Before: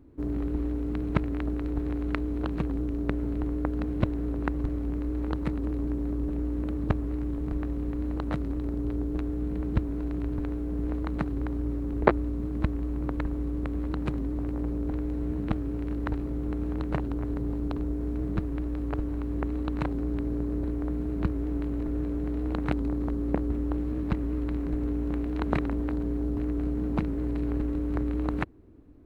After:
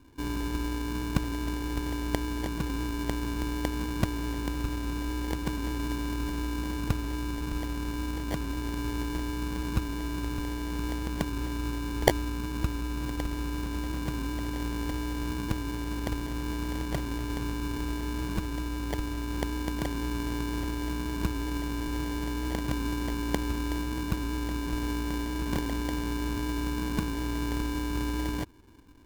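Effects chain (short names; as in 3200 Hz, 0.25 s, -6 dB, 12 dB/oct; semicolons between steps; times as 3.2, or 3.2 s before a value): tracing distortion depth 0.2 ms; sample-and-hold 34×; gain -2 dB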